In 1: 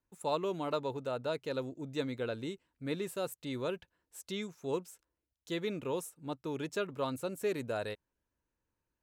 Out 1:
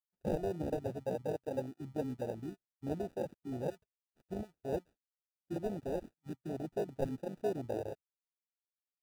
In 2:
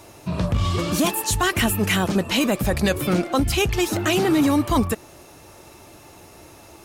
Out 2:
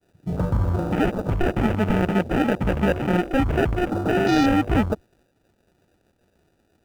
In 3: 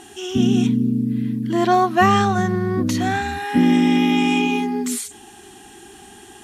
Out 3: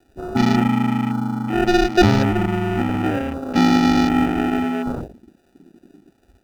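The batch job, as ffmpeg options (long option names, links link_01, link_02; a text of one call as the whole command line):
ffmpeg -i in.wav -af "acrusher=samples=41:mix=1:aa=0.000001,agate=range=-33dB:threshold=-42dB:ratio=3:detection=peak,afwtdn=0.0316" out.wav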